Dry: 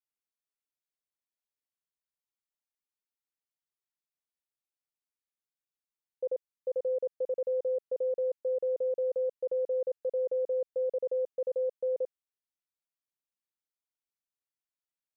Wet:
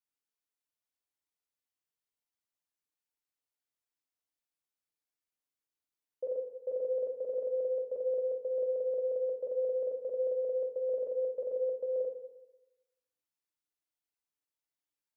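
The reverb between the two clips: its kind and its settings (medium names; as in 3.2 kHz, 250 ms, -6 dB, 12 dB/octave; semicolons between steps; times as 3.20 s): FDN reverb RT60 1 s, low-frequency decay 0.85×, high-frequency decay 0.85×, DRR 1 dB; trim -3 dB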